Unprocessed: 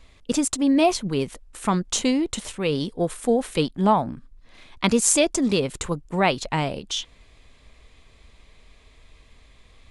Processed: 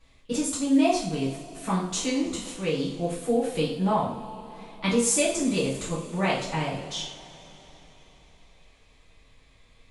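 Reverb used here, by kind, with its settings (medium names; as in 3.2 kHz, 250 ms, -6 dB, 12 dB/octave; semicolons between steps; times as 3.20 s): two-slope reverb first 0.49 s, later 4.2 s, from -21 dB, DRR -8 dB; trim -12.5 dB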